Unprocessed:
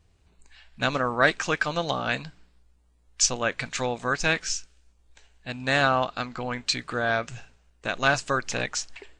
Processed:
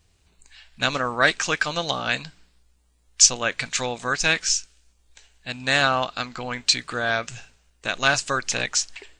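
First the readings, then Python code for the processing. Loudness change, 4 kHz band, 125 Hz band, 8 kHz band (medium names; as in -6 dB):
+4.0 dB, +6.5 dB, -1.0 dB, +8.0 dB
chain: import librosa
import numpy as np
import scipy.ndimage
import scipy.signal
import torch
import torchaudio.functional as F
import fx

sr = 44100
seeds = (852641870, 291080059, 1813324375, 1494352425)

y = fx.high_shelf(x, sr, hz=2200.0, db=10.0)
y = y * 10.0 ** (-1.0 / 20.0)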